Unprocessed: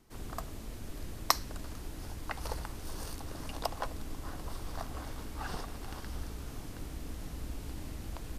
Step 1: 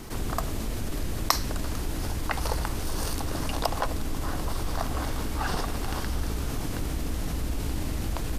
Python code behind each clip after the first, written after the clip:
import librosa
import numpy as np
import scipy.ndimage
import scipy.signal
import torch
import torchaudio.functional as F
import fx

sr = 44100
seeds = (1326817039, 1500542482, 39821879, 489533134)

y = fx.env_flatten(x, sr, amount_pct=50)
y = y * 10.0 ** (3.0 / 20.0)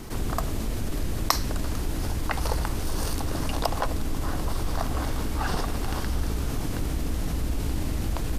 y = fx.low_shelf(x, sr, hz=490.0, db=2.5)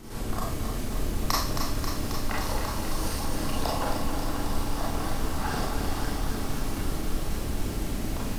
y = fx.rev_schroeder(x, sr, rt60_s=0.47, comb_ms=28, drr_db=-4.5)
y = fx.echo_crushed(y, sr, ms=269, feedback_pct=80, bits=7, wet_db=-6.5)
y = y * 10.0 ** (-7.5 / 20.0)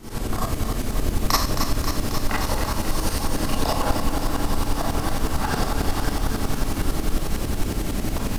y = fx.tremolo_shape(x, sr, shape='saw_up', hz=11.0, depth_pct=65)
y = y * 10.0 ** (8.5 / 20.0)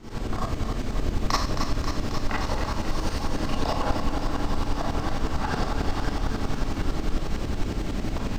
y = np.convolve(x, np.full(4, 1.0 / 4))[:len(x)]
y = y * 10.0 ** (-3.0 / 20.0)